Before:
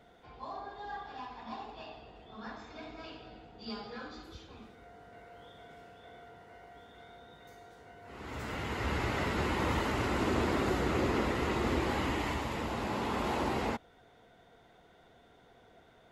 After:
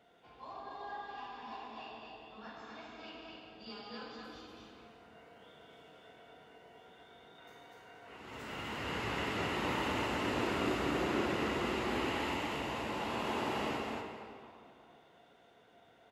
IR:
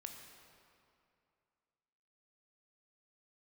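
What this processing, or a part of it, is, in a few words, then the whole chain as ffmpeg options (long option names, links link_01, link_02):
stadium PA: -filter_complex "[0:a]highpass=frequency=180:poles=1,equalizer=frequency=2800:width_type=o:width=0.22:gain=7.5,aecho=1:1:145.8|244.9:0.316|0.708[link_01];[1:a]atrim=start_sample=2205[link_02];[link_01][link_02]afir=irnorm=-1:irlink=0,asettb=1/sr,asplit=3[link_03][link_04][link_05];[link_03]atrim=end=7.384[link_06];[link_04]atrim=start=7.38:end=8.17,asetpts=PTS-STARTPTS,afade=type=in:duration=0.004:curve=qsin,afade=type=out:start_time=0.786:duration=0.004:curve=qsin,equalizer=frequency=1400:width_type=o:width=2.3:gain=4.5[link_07];[link_05]atrim=start=8.166[link_08];[link_06][link_07]acrossfade=duration=0.004:curve1=hsin:curve2=qsin[link_09];[link_09][link_08]acrossfade=duration=0.004:curve1=qsin:curve2=hsin"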